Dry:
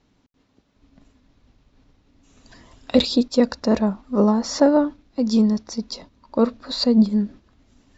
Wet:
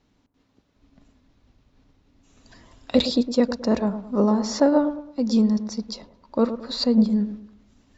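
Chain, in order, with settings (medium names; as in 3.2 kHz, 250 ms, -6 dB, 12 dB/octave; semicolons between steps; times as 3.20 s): feedback echo behind a low-pass 109 ms, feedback 34%, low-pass 1.3 kHz, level -10.5 dB; trim -2.5 dB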